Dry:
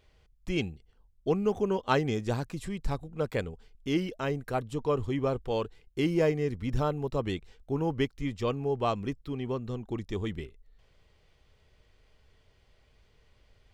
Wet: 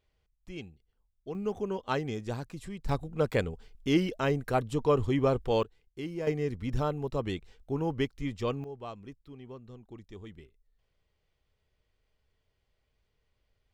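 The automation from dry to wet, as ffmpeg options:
-af "asetnsamples=n=441:p=0,asendcmd='1.35 volume volume -5dB;2.89 volume volume 3dB;5.63 volume volume -10dB;6.27 volume volume -1.5dB;8.64 volume volume -13dB',volume=0.251"

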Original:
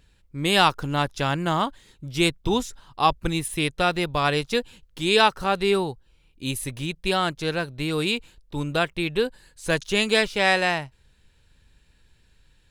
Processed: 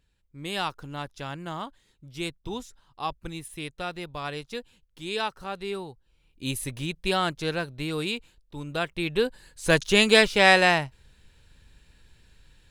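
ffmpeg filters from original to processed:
-af "volume=3.16,afade=t=in:st=5.9:d=0.57:silence=0.334965,afade=t=out:st=7.39:d=1.22:silence=0.446684,afade=t=in:st=8.61:d=1.16:silence=0.251189"

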